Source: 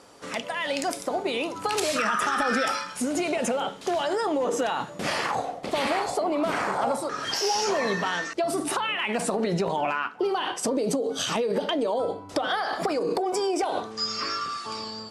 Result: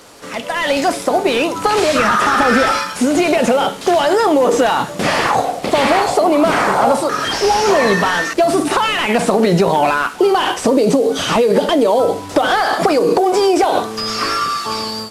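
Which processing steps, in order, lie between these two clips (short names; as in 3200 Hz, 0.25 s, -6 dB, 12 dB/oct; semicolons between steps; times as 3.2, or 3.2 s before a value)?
delta modulation 64 kbps, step -41.5 dBFS; AGC gain up to 7.5 dB; gain +5.5 dB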